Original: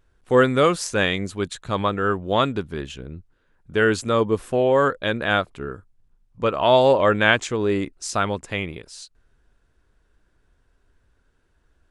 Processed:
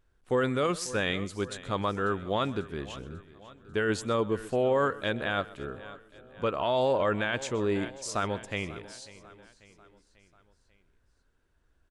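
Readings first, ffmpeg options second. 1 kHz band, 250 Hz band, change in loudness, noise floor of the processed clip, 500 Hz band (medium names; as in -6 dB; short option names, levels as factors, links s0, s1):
-9.0 dB, -7.5 dB, -9.0 dB, -69 dBFS, -8.5 dB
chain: -filter_complex "[0:a]asplit=2[s0][s1];[s1]aecho=0:1:543|1086|1629|2172:0.106|0.0561|0.0298|0.0158[s2];[s0][s2]amix=inputs=2:normalize=0,alimiter=limit=0.282:level=0:latency=1:release=20,asplit=2[s3][s4];[s4]aecho=0:1:127:0.1[s5];[s3][s5]amix=inputs=2:normalize=0,volume=0.473"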